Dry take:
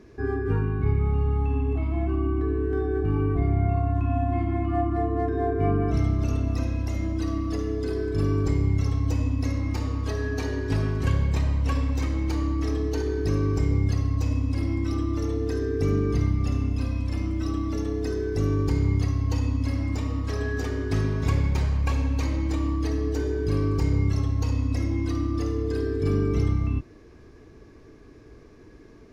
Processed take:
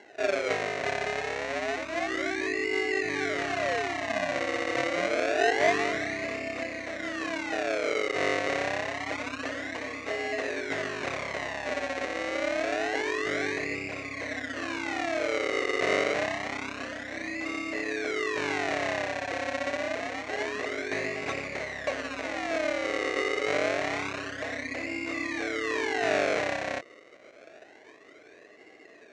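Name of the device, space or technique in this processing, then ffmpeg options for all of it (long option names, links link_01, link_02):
circuit-bent sampling toy: -af "acrusher=samples=36:mix=1:aa=0.000001:lfo=1:lforange=36:lforate=0.27,highpass=600,equalizer=frequency=620:width_type=q:width=4:gain=7,equalizer=frequency=910:width_type=q:width=4:gain=-9,equalizer=frequency=1300:width_type=q:width=4:gain=-7,equalizer=frequency=2000:width_type=q:width=4:gain=6,equalizer=frequency=3300:width_type=q:width=4:gain=-8,equalizer=frequency=4900:width_type=q:width=4:gain=-9,lowpass=frequency=5700:width=0.5412,lowpass=frequency=5700:width=1.3066,volume=5dB"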